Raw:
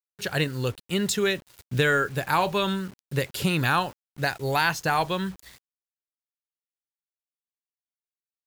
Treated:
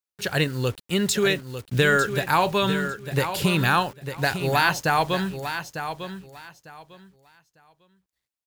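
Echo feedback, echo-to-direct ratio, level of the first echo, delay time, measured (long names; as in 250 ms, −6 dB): 21%, −9.5 dB, −9.5 dB, 900 ms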